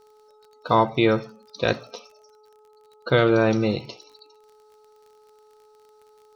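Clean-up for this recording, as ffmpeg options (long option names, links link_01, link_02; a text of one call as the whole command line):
ffmpeg -i in.wav -af "adeclick=threshold=4,bandreject=frequency=427:width_type=h:width=4,bandreject=frequency=854:width_type=h:width=4,bandreject=frequency=1281:width_type=h:width=4" out.wav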